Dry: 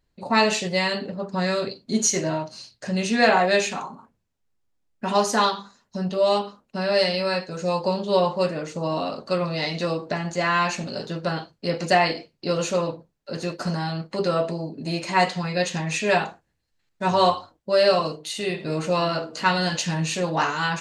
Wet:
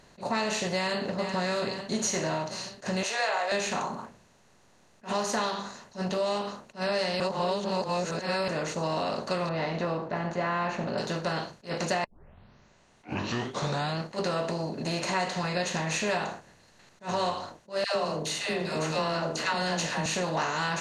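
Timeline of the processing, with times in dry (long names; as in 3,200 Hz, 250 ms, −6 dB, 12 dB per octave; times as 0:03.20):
0:00.74–0:01.36: delay throw 440 ms, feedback 50%, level −16 dB
0:03.03–0:03.52: inverse Chebyshev high-pass filter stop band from 270 Hz
0:07.20–0:08.48: reverse
0:09.49–0:10.98: low-pass filter 1,500 Hz
0:12.04: tape start 1.94 s
0:17.84–0:20.06: all-pass dispersion lows, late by 118 ms, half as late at 720 Hz
whole clip: compressor on every frequency bin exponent 0.6; downward compressor 4 to 1, threshold −19 dBFS; level that may rise only so fast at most 290 dB per second; level −6.5 dB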